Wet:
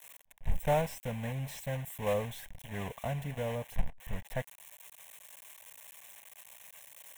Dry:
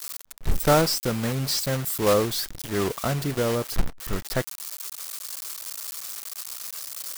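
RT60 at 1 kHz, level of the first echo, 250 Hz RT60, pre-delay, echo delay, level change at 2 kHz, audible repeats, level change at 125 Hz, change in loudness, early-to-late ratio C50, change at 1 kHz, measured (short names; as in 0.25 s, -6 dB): none, none, none, none, none, -10.5 dB, none, -8.0 dB, -10.0 dB, none, -9.5 dB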